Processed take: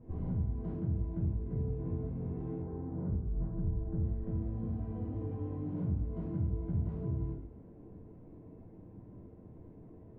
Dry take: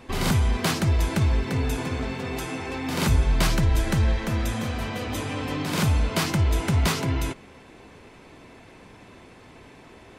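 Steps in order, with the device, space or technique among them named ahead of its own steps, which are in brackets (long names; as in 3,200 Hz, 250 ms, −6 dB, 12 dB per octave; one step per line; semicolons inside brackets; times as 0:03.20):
television next door (downward compressor 4 to 1, threshold −32 dBFS, peak gain reduction 14 dB; low-pass filter 290 Hz 12 dB per octave; convolution reverb RT60 0.70 s, pre-delay 3 ms, DRR −7.5 dB)
0:02.62–0:04.05: low-pass filter 1,700 Hz 24 dB per octave
level −6.5 dB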